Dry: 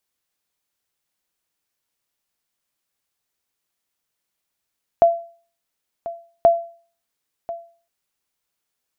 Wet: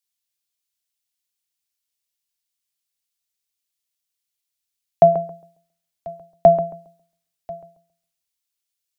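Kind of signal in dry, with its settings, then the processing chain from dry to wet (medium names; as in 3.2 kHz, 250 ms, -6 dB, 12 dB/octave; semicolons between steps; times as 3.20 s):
sonar ping 678 Hz, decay 0.42 s, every 1.43 s, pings 2, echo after 1.04 s, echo -16.5 dB -5.5 dBFS
octave divider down 2 oct, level +1 dB; filtered feedback delay 136 ms, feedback 30%, low-pass 1.3 kHz, level -11.5 dB; three bands expanded up and down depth 40%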